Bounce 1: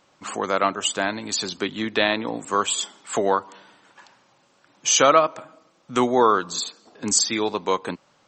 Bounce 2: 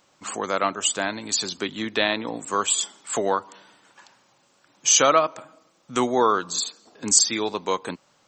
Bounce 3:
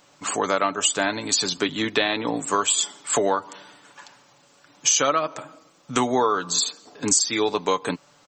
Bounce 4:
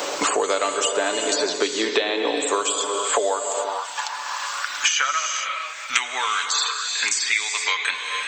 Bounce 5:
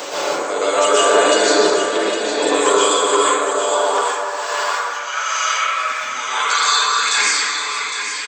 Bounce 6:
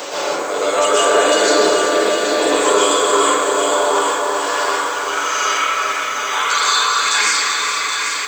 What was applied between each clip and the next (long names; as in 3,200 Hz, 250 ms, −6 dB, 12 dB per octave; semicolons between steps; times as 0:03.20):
high-shelf EQ 6,700 Hz +10.5 dB; level −2.5 dB
comb filter 6.9 ms, depth 42%; downward compressor 6 to 1, threshold −22 dBFS, peak gain reduction 11 dB; level +5 dB
reverb whose tail is shaped and stops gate 490 ms flat, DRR 6 dB; high-pass filter sweep 430 Hz → 2,100 Hz, 0:02.97–0:05.43; multiband upward and downward compressor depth 100%; level −1.5 dB
volume swells 534 ms; on a send: single-tap delay 809 ms −8.5 dB; on the sum: dense smooth reverb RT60 1.9 s, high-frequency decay 0.35×, pre-delay 110 ms, DRR −9.5 dB; level −1 dB
in parallel at −11 dB: soft clipping −16 dBFS, distortion −10 dB; on the sum: feedback echo at a low word length 387 ms, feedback 80%, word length 6 bits, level −8.5 dB; level −1.5 dB